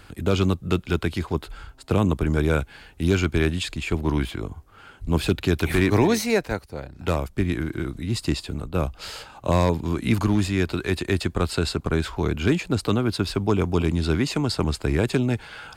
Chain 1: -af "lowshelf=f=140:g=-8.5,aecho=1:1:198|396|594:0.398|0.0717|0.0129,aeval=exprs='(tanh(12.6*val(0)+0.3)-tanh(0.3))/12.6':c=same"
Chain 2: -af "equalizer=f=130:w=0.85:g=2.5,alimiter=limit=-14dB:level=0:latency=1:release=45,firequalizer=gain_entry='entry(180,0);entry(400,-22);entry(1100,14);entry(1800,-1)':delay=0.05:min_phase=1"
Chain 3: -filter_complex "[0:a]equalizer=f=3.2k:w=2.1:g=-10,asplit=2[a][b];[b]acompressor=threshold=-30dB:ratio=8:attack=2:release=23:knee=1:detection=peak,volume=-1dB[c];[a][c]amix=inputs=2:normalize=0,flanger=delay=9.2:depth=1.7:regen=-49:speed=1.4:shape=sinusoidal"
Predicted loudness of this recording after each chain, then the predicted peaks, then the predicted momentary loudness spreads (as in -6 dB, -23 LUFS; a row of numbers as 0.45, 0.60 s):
-30.0, -26.5, -26.0 LUFS; -20.0, -10.0, -10.0 dBFS; 6, 7, 9 LU